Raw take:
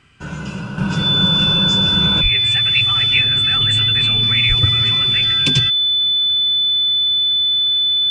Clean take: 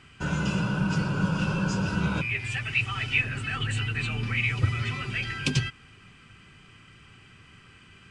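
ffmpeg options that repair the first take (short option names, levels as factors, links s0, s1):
-filter_complex "[0:a]bandreject=f=3500:w=30,asplit=3[s0][s1][s2];[s0]afade=t=out:st=2.22:d=0.02[s3];[s1]highpass=f=140:w=0.5412,highpass=f=140:w=1.3066,afade=t=in:st=2.22:d=0.02,afade=t=out:st=2.34:d=0.02[s4];[s2]afade=t=in:st=2.34:d=0.02[s5];[s3][s4][s5]amix=inputs=3:normalize=0,asplit=3[s6][s7][s8];[s6]afade=t=out:st=4.48:d=0.02[s9];[s7]highpass=f=140:w=0.5412,highpass=f=140:w=1.3066,afade=t=in:st=4.48:d=0.02,afade=t=out:st=4.6:d=0.02[s10];[s8]afade=t=in:st=4.6:d=0.02[s11];[s9][s10][s11]amix=inputs=3:normalize=0,asetnsamples=n=441:p=0,asendcmd='0.78 volume volume -6.5dB',volume=1"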